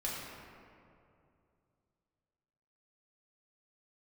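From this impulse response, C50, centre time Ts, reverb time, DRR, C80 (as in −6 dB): −1.0 dB, 123 ms, 2.6 s, −6.0 dB, 0.5 dB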